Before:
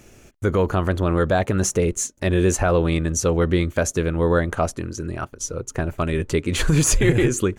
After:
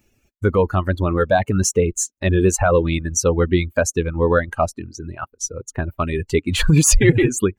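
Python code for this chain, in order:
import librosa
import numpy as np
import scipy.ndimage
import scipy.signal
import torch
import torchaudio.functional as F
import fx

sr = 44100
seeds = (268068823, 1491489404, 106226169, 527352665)

y = fx.bin_expand(x, sr, power=1.5)
y = fx.dereverb_blind(y, sr, rt60_s=0.78)
y = y * 10.0 ** (6.0 / 20.0)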